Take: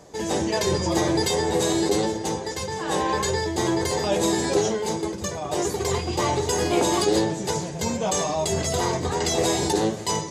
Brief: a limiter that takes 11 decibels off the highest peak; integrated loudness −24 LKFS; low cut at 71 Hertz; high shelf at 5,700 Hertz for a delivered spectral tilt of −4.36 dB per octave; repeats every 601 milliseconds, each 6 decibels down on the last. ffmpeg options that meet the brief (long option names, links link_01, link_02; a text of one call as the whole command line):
ffmpeg -i in.wav -af "highpass=71,highshelf=frequency=5700:gain=-5,alimiter=limit=-20.5dB:level=0:latency=1,aecho=1:1:601|1202|1803|2404|3005|3606:0.501|0.251|0.125|0.0626|0.0313|0.0157,volume=4dB" out.wav